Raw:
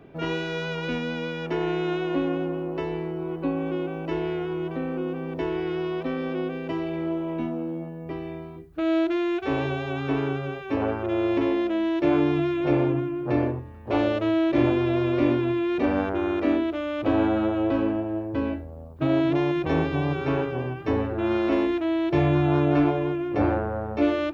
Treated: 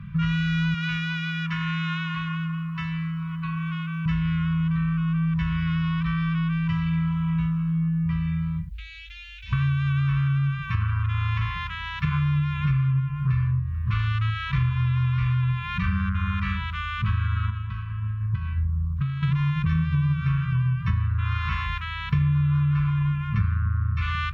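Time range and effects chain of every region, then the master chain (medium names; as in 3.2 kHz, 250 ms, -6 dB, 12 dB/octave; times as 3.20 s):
0.74–4.06 s: high-pass 99 Hz + bass shelf 500 Hz -9 dB
8.69–9.53 s: inverse Chebyshev band-stop 240–750 Hz, stop band 70 dB + doubling 18 ms -5.5 dB + compression 2.5:1, threshold -47 dBFS
17.50–19.23 s: compression 20:1, threshold -30 dBFS + short-mantissa float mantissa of 8-bit
whole clip: FFT band-reject 210–990 Hz; tone controls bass +12 dB, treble -6 dB; compression 5:1, threshold -28 dBFS; trim +7 dB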